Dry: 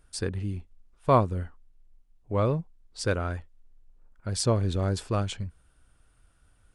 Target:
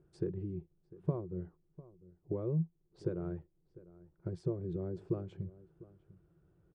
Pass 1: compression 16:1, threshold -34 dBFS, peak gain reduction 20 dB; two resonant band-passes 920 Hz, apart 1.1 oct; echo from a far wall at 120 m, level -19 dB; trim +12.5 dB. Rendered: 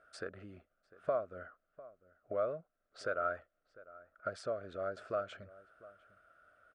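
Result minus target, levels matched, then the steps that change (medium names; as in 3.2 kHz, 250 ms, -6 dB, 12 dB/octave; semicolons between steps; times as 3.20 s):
1 kHz band +15.0 dB
change: two resonant band-passes 240 Hz, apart 1.1 oct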